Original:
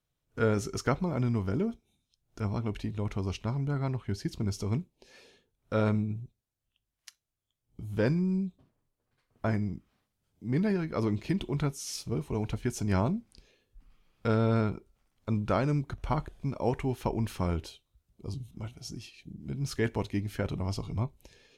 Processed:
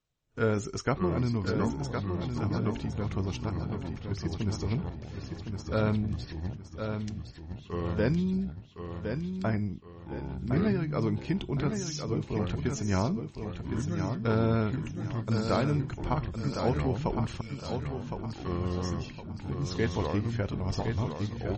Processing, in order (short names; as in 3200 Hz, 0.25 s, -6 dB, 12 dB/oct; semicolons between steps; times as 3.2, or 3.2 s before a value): 3.49–4.11 level quantiser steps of 21 dB; 17.41–18.58 Chebyshev high-pass 2200 Hz, order 8; 19.41–20.07 high shelf 8200 Hz -3 dB; echoes that change speed 0.493 s, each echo -4 st, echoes 2, each echo -6 dB; feedback echo 1.062 s, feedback 35%, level -6.5 dB; pops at 6.13, -27 dBFS; MP3 32 kbps 44100 Hz